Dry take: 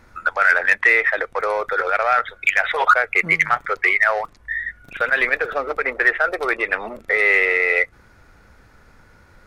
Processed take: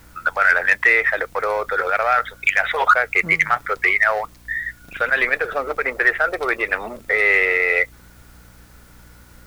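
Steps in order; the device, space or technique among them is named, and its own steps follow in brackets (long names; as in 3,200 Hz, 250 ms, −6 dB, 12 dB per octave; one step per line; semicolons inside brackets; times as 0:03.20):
video cassette with head-switching buzz (hum with harmonics 60 Hz, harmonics 5, −49 dBFS −6 dB per octave; white noise bed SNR 34 dB)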